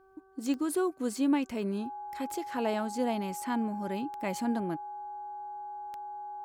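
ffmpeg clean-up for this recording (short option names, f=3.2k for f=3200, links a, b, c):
-af "adeclick=t=4,bandreject=f=383.4:t=h:w=4,bandreject=f=766.8:t=h:w=4,bandreject=f=1.1502k:t=h:w=4,bandreject=f=1.5336k:t=h:w=4,bandreject=f=830:w=30"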